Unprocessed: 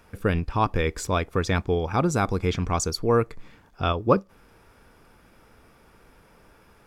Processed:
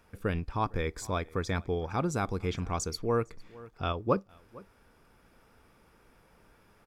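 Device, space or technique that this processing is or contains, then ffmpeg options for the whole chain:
ducked delay: -filter_complex "[0:a]asplit=3[link_01][link_02][link_03];[link_02]adelay=456,volume=-5dB[link_04];[link_03]apad=whole_len=322758[link_05];[link_04][link_05]sidechaincompress=threshold=-38dB:ratio=12:attack=9.1:release=673[link_06];[link_01][link_06]amix=inputs=2:normalize=0,asettb=1/sr,asplit=3[link_07][link_08][link_09];[link_07]atrim=end=0.514[link_10];[link_08]atrim=start=0.51:end=1.89,asetpts=PTS-STARTPTS,afade=type=in:duration=0.004:curve=qsin,afade=type=out:start_time=1.376:duration=0.004:curve=qsin,bandreject=frequency=2800:width=6[link_11];[link_09]atrim=start=1.886[link_12];[link_10][link_11]acrossfade=duration=0.004:curve1=hsin:curve2=qsin[link_13];[link_13][link_12]acrossfade=duration=0.004:curve1=qsin:curve2=hsin,volume=-7.5dB"

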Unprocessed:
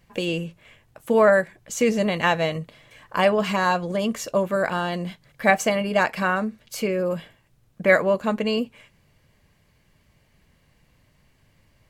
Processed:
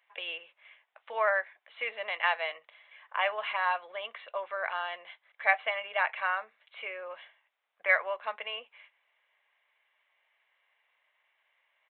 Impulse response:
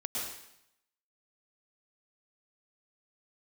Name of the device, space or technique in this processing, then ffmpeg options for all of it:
musical greeting card: -af "aresample=8000,aresample=44100,highpass=frequency=720:width=0.5412,highpass=frequency=720:width=1.3066,equalizer=frequency=2100:width_type=o:width=0.32:gain=5,volume=-6.5dB"

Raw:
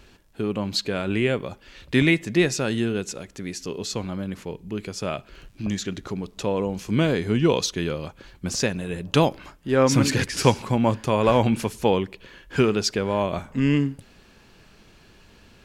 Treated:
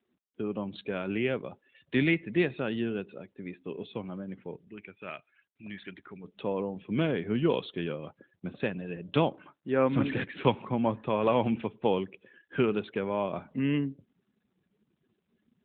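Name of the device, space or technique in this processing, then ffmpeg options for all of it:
mobile call with aggressive noise cancelling: -filter_complex "[0:a]asplit=3[link_01][link_02][link_03];[link_01]afade=type=out:start_time=4.67:duration=0.02[link_04];[link_02]equalizer=frequency=125:width_type=o:width=1:gain=-10,equalizer=frequency=250:width_type=o:width=1:gain=-6,equalizer=frequency=500:width_type=o:width=1:gain=-7,equalizer=frequency=1000:width_type=o:width=1:gain=-5,equalizer=frequency=2000:width_type=o:width=1:gain=6,equalizer=frequency=4000:width_type=o:width=1:gain=-4,equalizer=frequency=8000:width_type=o:width=1:gain=-9,afade=type=in:start_time=4.67:duration=0.02,afade=type=out:start_time=6.23:duration=0.02[link_05];[link_03]afade=type=in:start_time=6.23:duration=0.02[link_06];[link_04][link_05][link_06]amix=inputs=3:normalize=0,highpass=140,afftdn=noise_reduction=35:noise_floor=-43,volume=-6dB" -ar 8000 -c:a libopencore_amrnb -b:a 12200

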